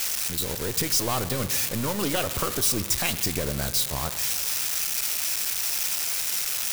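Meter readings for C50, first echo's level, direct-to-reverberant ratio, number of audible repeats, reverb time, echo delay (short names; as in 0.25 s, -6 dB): 12.5 dB, none, 11.5 dB, none, 2.8 s, none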